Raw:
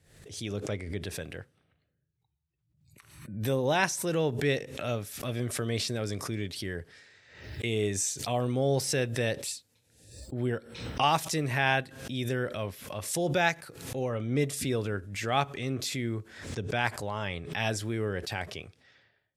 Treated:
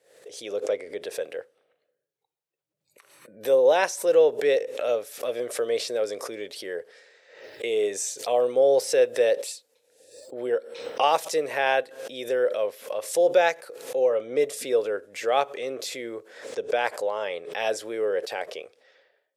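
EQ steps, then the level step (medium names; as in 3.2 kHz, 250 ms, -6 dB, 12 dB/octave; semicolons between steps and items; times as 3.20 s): resonant high-pass 500 Hz, resonance Q 4.9; 0.0 dB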